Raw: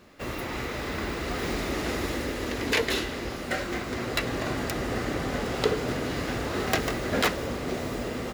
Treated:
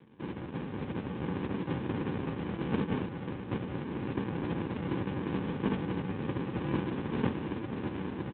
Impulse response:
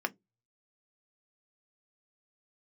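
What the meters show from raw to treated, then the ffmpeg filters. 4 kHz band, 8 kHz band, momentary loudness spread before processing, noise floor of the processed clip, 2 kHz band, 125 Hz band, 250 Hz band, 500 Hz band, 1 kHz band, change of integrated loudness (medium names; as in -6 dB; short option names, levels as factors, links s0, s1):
-16.5 dB, under -40 dB, 6 LU, -41 dBFS, -13.0 dB, -0.5 dB, -1.0 dB, -8.0 dB, -8.0 dB, -5.5 dB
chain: -af "bandreject=f=429:t=h:w=4,bandreject=f=858:t=h:w=4,bandreject=f=1287:t=h:w=4,aeval=exprs='val(0)*sin(2*PI*1100*n/s)':c=same,aecho=1:1:156|312:0.0841|0.0143,aresample=16000,acrusher=samples=24:mix=1:aa=0.000001,aresample=44100,volume=1.19" -ar 8000 -c:a libopencore_amrnb -b:a 6700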